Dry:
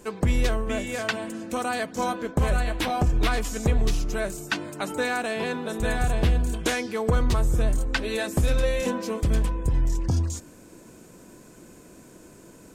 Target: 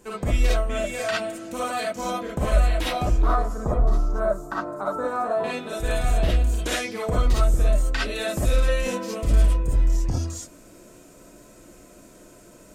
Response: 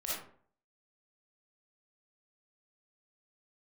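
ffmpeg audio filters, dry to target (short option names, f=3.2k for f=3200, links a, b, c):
-filter_complex "[0:a]asettb=1/sr,asplit=3[a][b][c];[a]atrim=end=3.224[d];[b]atrim=start=3.22:end=5.44,asetpts=PTS-STARTPTS,afade=t=in:d=0.004:c=qsin,afade=t=out:st=2.216:d=0.004:c=qsin,highshelf=f=1.7k:t=q:w=3:g=-14[e];[c]atrim=start=5.436[f];[d][e]acrossfade=d=0.004:c1=hsin:c2=qsin[g];[g][f]acrossfade=d=0.004:c1=qsin:c2=hsin[h];[1:a]atrim=start_sample=2205,atrim=end_sample=3528[i];[h][i]afir=irnorm=-1:irlink=0"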